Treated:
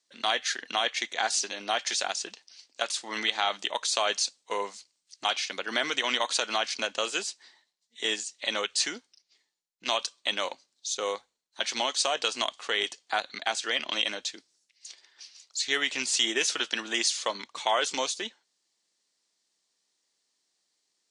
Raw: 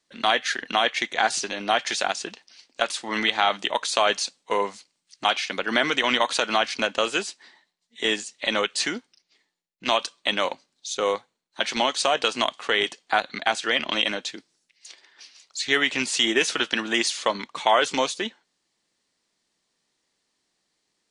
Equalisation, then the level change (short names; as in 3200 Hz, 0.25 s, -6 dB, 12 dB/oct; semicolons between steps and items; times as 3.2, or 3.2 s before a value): LPF 7700 Hz 12 dB/oct; tone controls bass -8 dB, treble +11 dB; notches 50/100 Hz; -7.0 dB